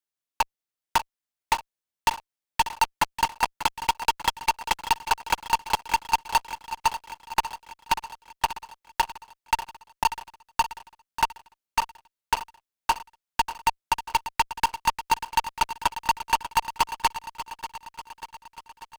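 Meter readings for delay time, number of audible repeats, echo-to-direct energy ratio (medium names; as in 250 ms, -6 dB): 591 ms, 6, -10.5 dB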